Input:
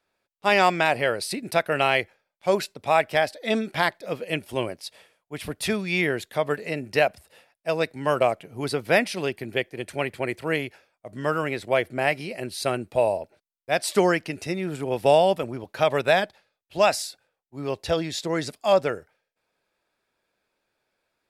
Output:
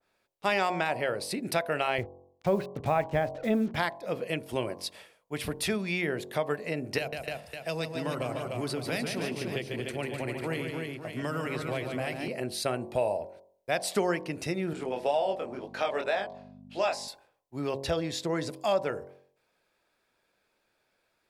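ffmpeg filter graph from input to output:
-filter_complex "[0:a]asettb=1/sr,asplit=3[a][b][c];[a]atrim=end=1.984[d];[b]atrim=start=1.98:end=3.76,asetpts=PTS-STARTPTS,afade=t=in:d=0.004:c=qsin,afade=t=out:st=1.776:d=0.004:c=qsin,lowpass=3.6k,aemphasis=mode=reproduction:type=riaa,acrusher=bits=6:mix=0:aa=0.5[e];[c]atrim=start=3.756[f];[d][e]acrossfade=d=0.004:c1=hsin:c2=qsin[g];[g][f]acrossfade=d=0.004:c1=qsin:c2=hsin,asettb=1/sr,asplit=3[h][i][j];[h]atrim=end=6.984[k];[i]atrim=start=6.98:end=12.28,asetpts=PTS-STARTPTS,afade=t=in:d=0.004:c=qsin,afade=t=out:st=5.296:d=0.004:c=qsin,bandreject=f=50:t=h:w=6,bandreject=f=100:t=h:w=6,bandreject=f=150:t=h:w=6,bandreject=f=200:t=h:w=6,acrossover=split=220|3000[l][m][n];[m]acompressor=threshold=-33dB:ratio=3:attack=3.2:release=140:knee=2.83:detection=peak[o];[l][o][n]amix=inputs=3:normalize=0,aecho=1:1:144|253|296|551:0.447|0.112|0.501|0.211,atrim=end_sample=233730[p];[j]atrim=start=12.276[q];[k][p]acrossfade=d=0.004:c1=hsin:c2=qsin[r];[r][q]acrossfade=d=0.004:c1=qsin:c2=hsin,asettb=1/sr,asplit=3[s][t][u];[s]atrim=end=14.734[v];[t]atrim=start=14.73:end=17.08,asetpts=PTS-STARTPTS,afade=t=in:d=0.004:c=qsin,afade=t=out:st=2.346:d=0.004:c=qsin,flanger=delay=20:depth=5.2:speed=2,aeval=exprs='val(0)+0.0178*(sin(2*PI*50*n/s)+sin(2*PI*2*50*n/s)/2+sin(2*PI*3*50*n/s)/3+sin(2*PI*4*50*n/s)/4+sin(2*PI*5*50*n/s)/5)':c=same,highpass=310,lowpass=7.8k[w];[u]atrim=start=17.076[x];[v][w]acrossfade=d=0.004:c1=hsin:c2=qsin[y];[y][x]acrossfade=d=0.004:c1=qsin:c2=hsin,bandreject=f=45.53:t=h:w=4,bandreject=f=91.06:t=h:w=4,bandreject=f=136.59:t=h:w=4,bandreject=f=182.12:t=h:w=4,bandreject=f=227.65:t=h:w=4,bandreject=f=273.18:t=h:w=4,bandreject=f=318.71:t=h:w=4,bandreject=f=364.24:t=h:w=4,bandreject=f=409.77:t=h:w=4,bandreject=f=455.3:t=h:w=4,bandreject=f=500.83:t=h:w=4,bandreject=f=546.36:t=h:w=4,bandreject=f=591.89:t=h:w=4,bandreject=f=637.42:t=h:w=4,bandreject=f=682.95:t=h:w=4,bandreject=f=728.48:t=h:w=4,bandreject=f=774.01:t=h:w=4,bandreject=f=819.54:t=h:w=4,bandreject=f=865.07:t=h:w=4,bandreject=f=910.6:t=h:w=4,bandreject=f=956.13:t=h:w=4,bandreject=f=1.00166k:t=h:w=4,bandreject=f=1.04719k:t=h:w=4,bandreject=f=1.09272k:t=h:w=4,bandreject=f=1.13825k:t=h:w=4,acompressor=threshold=-33dB:ratio=2,adynamicequalizer=threshold=0.00631:dfrequency=1600:dqfactor=0.7:tfrequency=1600:tqfactor=0.7:attack=5:release=100:ratio=0.375:range=3:mode=cutabove:tftype=highshelf,volume=2.5dB"

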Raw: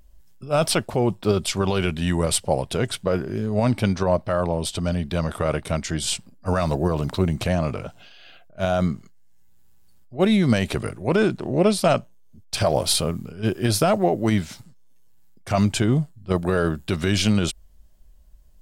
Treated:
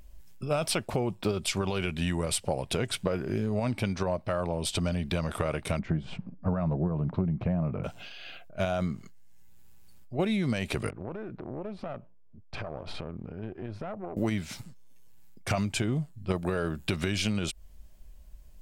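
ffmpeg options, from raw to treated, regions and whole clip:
-filter_complex "[0:a]asettb=1/sr,asplit=3[a][b][c];[a]atrim=end=5.794[d];[b]atrim=start=5.79:end=7.84,asetpts=PTS-STARTPTS,afade=t=in:d=0.004:c=qsin,afade=t=out:st=2.046:d=0.004:c=qsin,lowpass=1.2k,equalizer=f=170:t=o:w=0.84:g=9.5[e];[c]atrim=start=7.836[f];[d][e]acrossfade=d=0.004:c1=hsin:c2=qsin[g];[g][f]acrossfade=d=0.004:c1=qsin:c2=hsin,asettb=1/sr,asplit=3[h][i][j];[h]atrim=end=10.904[k];[i]atrim=start=10.9:end=14.17,asetpts=PTS-STARTPTS,afade=t=in:d=0.004:c=qsin,afade=t=out:st=3.266:d=0.004:c=qsin,lowpass=1.4k,acompressor=threshold=-32dB:ratio=12:attack=3.2:release=140:knee=1:detection=peak,aeval=exprs='(tanh(25.1*val(0)+0.75)-tanh(0.75))/25.1':c=same[l];[j]atrim=start=14.166[m];[k][l]acrossfade=d=0.004:c1=hsin:c2=qsin[n];[n][m]acrossfade=d=0.004:c1=qsin:c2=hsin,equalizer=f=2.4k:t=o:w=0.37:g=5,acompressor=threshold=-27dB:ratio=10,volume=2dB"

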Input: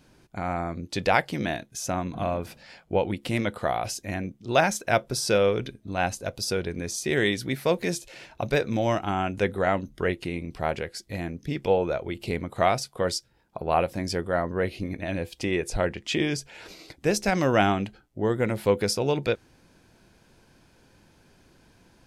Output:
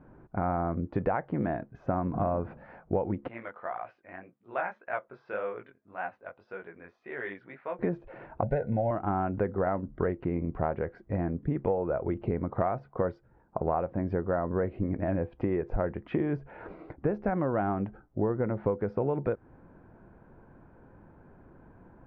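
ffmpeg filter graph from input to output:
-filter_complex "[0:a]asettb=1/sr,asplit=3[a][b][c];[a]atrim=end=3.284[d];[b]atrim=start=3.28:end=7.79,asetpts=PTS-STARTPTS,afade=t=in:d=0.004:c=qsin,afade=t=out:st=4.506:d=0.004:c=qsin,bandpass=f=2.7k:t=q:w=0.99,flanger=delay=15.5:depth=7.1:speed=1.8[e];[c]atrim=start=7.786[f];[d][e]acrossfade=d=0.004:c1=hsin:c2=qsin[g];[g][f]acrossfade=d=0.004:c1=qsin:c2=hsin,asettb=1/sr,asplit=3[h][i][j];[h]atrim=end=8.434[k];[i]atrim=start=8.43:end=8.91,asetpts=PTS-STARTPTS,afade=t=in:d=0.004:c=qsin,afade=t=out:st=0.476:d=0.004:c=qsin,asuperstop=centerf=1200:order=20:qfactor=3,aecho=1:1:1.5:0.61,atrim=end_sample=21168[l];[j]atrim=start=8.906[m];[k][l]acrossfade=d=0.004:c1=hsin:c2=qsin[n];[n][m]acrossfade=d=0.004:c1=qsin:c2=hsin,lowpass=f=1.4k:w=0.5412,lowpass=f=1.4k:w=1.3066,acompressor=threshold=-29dB:ratio=10,volume=4.5dB"

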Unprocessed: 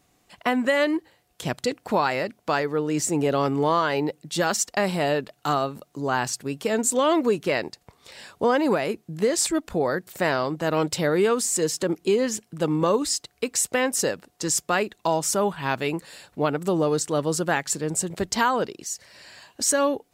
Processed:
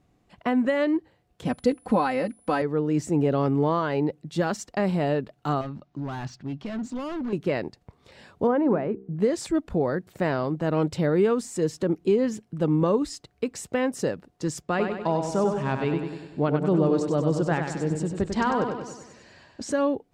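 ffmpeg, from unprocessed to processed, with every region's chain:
-filter_complex "[0:a]asettb=1/sr,asplit=3[a][b][c];[a]atrim=end=1.454[d];[b]atrim=start=1.45:end=2.62,asetpts=PTS-STARTPTS,afade=t=in:d=0.004:c=qsin,afade=t=out:st=1.166:d=0.004:c=qsin,aeval=exprs='val(0)+0.00631*sin(2*PI*10000*n/s)':c=same,aecho=1:1:3.9:0.76,atrim=end_sample=51597[e];[c]atrim=start=2.616[f];[d][e]acrossfade=d=0.004:c1=hsin:c2=qsin[g];[g][f]acrossfade=d=0.004:c1=qsin:c2=hsin,asettb=1/sr,asplit=3[h][i][j];[h]atrim=end=5.614[k];[i]atrim=start=5.61:end=7.33,asetpts=PTS-STARTPTS,afade=t=in:d=0.004:c=qsin,afade=t=out:st=1.716:d=0.004:c=qsin,lowpass=f=5.7k:w=0.5412,lowpass=f=5.7k:w=1.3066,equalizer=f=460:w=3.6:g=-13.5,asoftclip=type=hard:threshold=-29dB[l];[j]atrim=start=7.326[m];[k][l]acrossfade=d=0.004:c1=hsin:c2=qsin[n];[n][m]acrossfade=d=0.004:c1=qsin:c2=hsin,asettb=1/sr,asplit=3[o][p][q];[o]atrim=end=8.474[r];[p]atrim=start=8.47:end=9.2,asetpts=PTS-STARTPTS,afade=t=in:d=0.004:c=qsin,afade=t=out:st=0.726:d=0.004:c=qsin,lowpass=1.6k,bandreject=f=65.45:t=h:w=4,bandreject=f=130.9:t=h:w=4,bandreject=f=196.35:t=h:w=4,bandreject=f=261.8:t=h:w=4,bandreject=f=327.25:t=h:w=4,bandreject=f=392.7:t=h:w=4,bandreject=f=458.15:t=h:w=4[s];[q]atrim=start=9.196[t];[r][s]acrossfade=d=0.004:c1=hsin:c2=qsin[u];[u][t]acrossfade=d=0.004:c1=qsin:c2=hsin,asettb=1/sr,asplit=3[v][w][x];[v]atrim=end=14.624[y];[w]atrim=start=14.62:end=19.72,asetpts=PTS-STARTPTS,afade=t=in:d=0.004:c=qsin,afade=t=out:st=5.096:d=0.004:c=qsin,lowpass=7.6k,aecho=1:1:97|194|291|388|485|582|679:0.501|0.271|0.146|0.0789|0.0426|0.023|0.0124,atrim=end_sample=224910[z];[x]atrim=start=19.716[aa];[y][z]acrossfade=d=0.004:c1=hsin:c2=qsin[ab];[ab][aa]acrossfade=d=0.004:c1=qsin:c2=hsin,lowpass=f=2.6k:p=1,lowshelf=f=400:g=10.5,volume=-5.5dB"

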